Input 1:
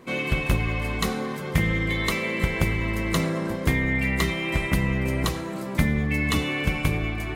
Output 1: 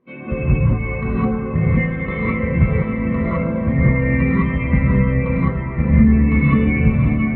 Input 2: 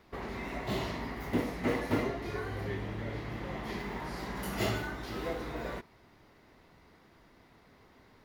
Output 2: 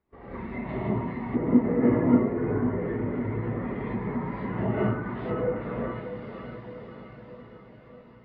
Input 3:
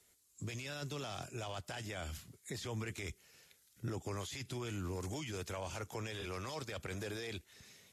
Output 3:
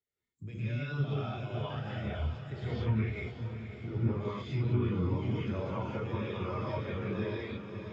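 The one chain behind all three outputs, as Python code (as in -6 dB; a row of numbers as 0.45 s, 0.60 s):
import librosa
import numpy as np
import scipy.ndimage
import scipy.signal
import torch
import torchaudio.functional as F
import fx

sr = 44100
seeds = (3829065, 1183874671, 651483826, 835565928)

p1 = scipy.signal.sosfilt(scipy.signal.butter(2, 3900.0, 'lowpass', fs=sr, output='sos'), x)
p2 = p1 + fx.echo_diffused(p1, sr, ms=594, feedback_pct=70, wet_db=-6.5, dry=0)
p3 = fx.rev_gated(p2, sr, seeds[0], gate_ms=230, shape='rising', drr_db=-6.5)
p4 = fx.env_lowpass_down(p3, sr, base_hz=1800.0, full_db=-23.0)
p5 = fx.spectral_expand(p4, sr, expansion=1.5)
y = F.gain(torch.from_numpy(p5), 3.0).numpy()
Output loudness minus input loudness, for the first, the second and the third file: +7.5 LU, +8.5 LU, +8.0 LU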